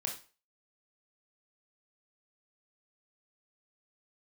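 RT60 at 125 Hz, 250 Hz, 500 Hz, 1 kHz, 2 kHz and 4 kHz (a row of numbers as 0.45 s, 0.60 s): 0.35 s, 0.35 s, 0.35 s, 0.35 s, 0.35 s, 0.35 s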